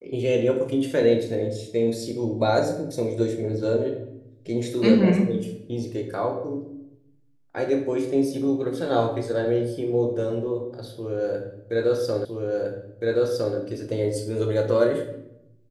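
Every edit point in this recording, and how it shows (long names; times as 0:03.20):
0:12.25: the same again, the last 1.31 s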